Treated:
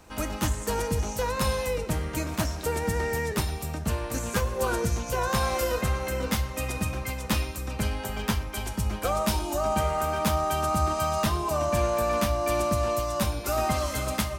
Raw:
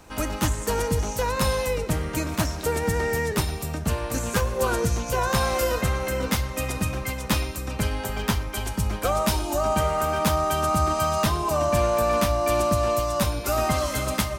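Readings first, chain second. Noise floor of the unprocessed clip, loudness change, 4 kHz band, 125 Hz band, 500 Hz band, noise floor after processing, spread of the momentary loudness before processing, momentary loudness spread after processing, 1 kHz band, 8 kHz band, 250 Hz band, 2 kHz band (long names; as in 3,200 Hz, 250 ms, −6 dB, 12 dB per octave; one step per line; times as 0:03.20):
−33 dBFS, −3.0 dB, −3.5 dB, −3.0 dB, −3.5 dB, −36 dBFS, 6 LU, 5 LU, −3.0 dB, −3.0 dB, −3.0 dB, −3.0 dB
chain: tuned comb filter 71 Hz, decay 0.32 s, harmonics odd, mix 50%
level +1.5 dB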